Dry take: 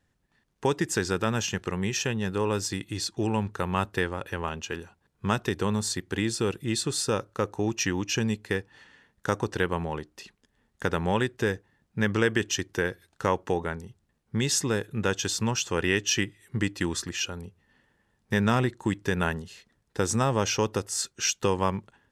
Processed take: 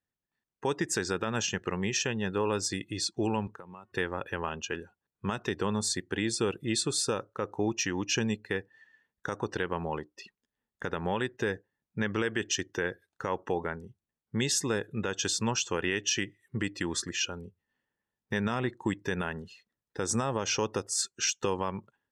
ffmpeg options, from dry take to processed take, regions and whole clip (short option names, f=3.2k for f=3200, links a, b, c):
-filter_complex "[0:a]asettb=1/sr,asplit=3[a][b][c];[a]atrim=end=3.474[d];[b]atrim=start=3.47:end=3.92,asetpts=PTS-STARTPTS,afade=t=in:d=0.004:c=qsin,afade=t=out:st=0.446:d=0.004:c=qsin,highpass=120,bandreject=f=365.7:t=h:w=4,bandreject=f=731.4:t=h:w=4,bandreject=f=1.0971k:t=h:w=4,bandreject=f=1.4628k:t=h:w=4,bandreject=f=1.8285k:t=h:w=4,bandreject=f=2.1942k:t=h:w=4,bandreject=f=2.5599k:t=h:w=4,bandreject=f=2.9256k:t=h:w=4,acompressor=threshold=-41dB:ratio=6:attack=3.2:release=140:knee=1:detection=peak[e];[c]atrim=start=3.916[f];[d][e]acrossfade=d=0.004:c1=hsin:c2=qsin[g];[g][f]acrossfade=d=0.004:c1=qsin:c2=hsin,afftdn=nr=17:nf=-45,lowshelf=f=140:g=-8.5,alimiter=limit=-17.5dB:level=0:latency=1:release=131"